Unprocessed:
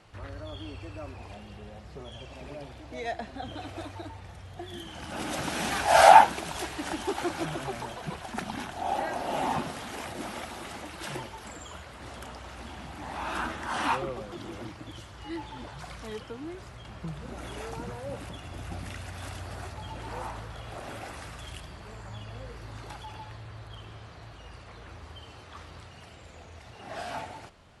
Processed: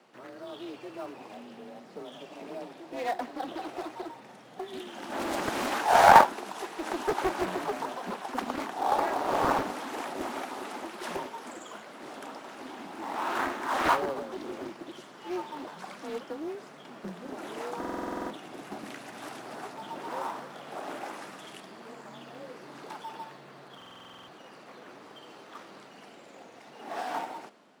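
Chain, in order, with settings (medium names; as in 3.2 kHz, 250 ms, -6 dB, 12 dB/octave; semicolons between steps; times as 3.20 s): dynamic bell 980 Hz, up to +4 dB, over -46 dBFS, Q 1.5; level rider gain up to 3 dB; bass shelf 470 Hz +5.5 dB; in parallel at -10.5 dB: sample-and-hold 10×; on the sum: high-pass 200 Hz 24 dB/octave; frequency shift +30 Hz; buffer glitch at 17.79/23.77 s, samples 2048, times 10; loudspeaker Doppler distortion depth 0.85 ms; trim -5.5 dB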